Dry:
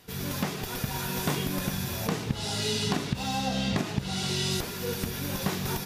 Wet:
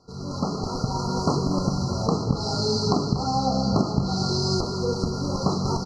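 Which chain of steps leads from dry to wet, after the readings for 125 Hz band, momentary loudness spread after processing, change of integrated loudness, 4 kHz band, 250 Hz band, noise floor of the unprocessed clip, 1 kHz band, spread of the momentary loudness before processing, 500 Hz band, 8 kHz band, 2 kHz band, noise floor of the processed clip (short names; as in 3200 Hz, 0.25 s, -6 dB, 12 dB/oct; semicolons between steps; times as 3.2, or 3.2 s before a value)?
+6.5 dB, 5 LU, +5.0 dB, +1.5 dB, +6.5 dB, -36 dBFS, +7.5 dB, 4 LU, +7.5 dB, -1.0 dB, under -10 dB, -32 dBFS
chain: LPF 5300 Hz 24 dB/oct; notches 50/100/150/200 Hz; FFT band-reject 1400–4000 Hz; feedback echo 0.238 s, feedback 28%, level -12 dB; AGC gain up to 7.5 dB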